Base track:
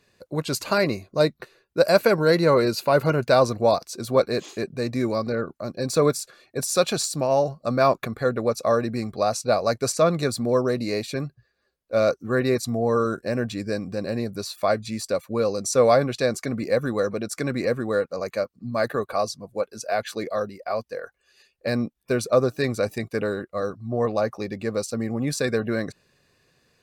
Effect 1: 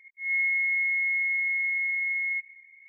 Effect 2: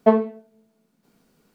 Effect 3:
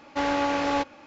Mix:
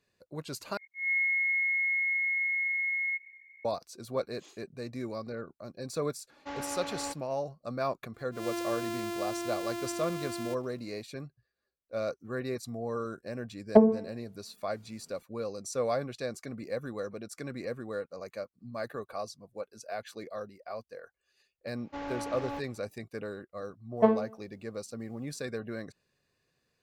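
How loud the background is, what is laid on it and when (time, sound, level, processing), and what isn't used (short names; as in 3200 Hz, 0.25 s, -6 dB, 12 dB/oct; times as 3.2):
base track -13 dB
0.77 replace with 1 -2.5 dB
6.3 add 3 -13.5 dB
8.14 add 1 -9.5 dB + sample sorter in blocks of 128 samples
13.69 add 2 -1.5 dB + treble ducked by the level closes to 500 Hz, closed at -12.5 dBFS
21.77 add 3 -14 dB + tilt -1.5 dB/oct
23.96 add 2 -7 dB, fades 0.02 s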